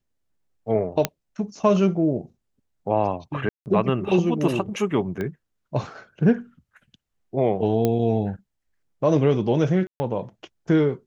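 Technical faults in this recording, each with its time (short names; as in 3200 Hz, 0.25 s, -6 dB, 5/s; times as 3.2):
1.05 pop -5 dBFS
3.49–3.66 gap 0.169 s
5.21 pop -17 dBFS
7.85 pop -9 dBFS
9.87–10 gap 0.13 s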